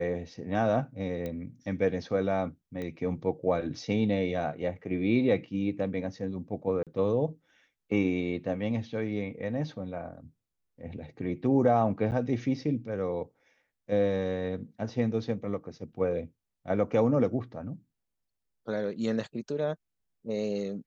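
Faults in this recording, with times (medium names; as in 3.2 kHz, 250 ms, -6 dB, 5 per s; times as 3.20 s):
1.26 s: pop -23 dBFS
2.82 s: pop -25 dBFS
6.83–6.87 s: dropout 37 ms
12.11–12.12 s: dropout 9.4 ms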